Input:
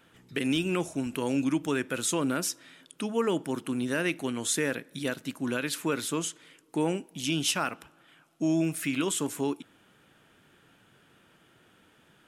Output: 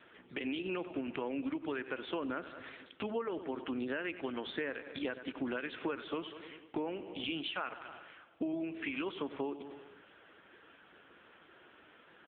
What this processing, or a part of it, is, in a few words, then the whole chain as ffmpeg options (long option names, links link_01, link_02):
voicemail: -filter_complex "[0:a]aecho=1:1:95|190|285|380|475:0.178|0.0978|0.0538|0.0296|0.0163,asettb=1/sr,asplit=3[link_01][link_02][link_03];[link_01]atrim=end=7.564[link_04];[link_02]atrim=start=7.56:end=8.53,asetpts=PTS-STARTPTS,afade=type=in:duration=0.004:curve=qsin,afade=type=out:start_time=0.966:duration=0.004:curve=qsin,adynamicequalizer=threshold=0.00891:dfrequency=310:dqfactor=7.8:tfrequency=310:tqfactor=7.8:attack=5:release=100:ratio=0.375:range=2:mode=cutabove:tftype=bell[link_05];[link_03]atrim=start=8.526[link_06];[link_04][link_05]acrossfade=duration=0.004:curve1=hsin:curve2=qsin[link_07];[link_07][link_06]acrossfade=duration=0.004:curve1=qsin:curve2=hsin,highpass=330,lowpass=3300,acompressor=threshold=-40dB:ratio=10,volume=7dB" -ar 8000 -c:a libopencore_amrnb -b:a 6700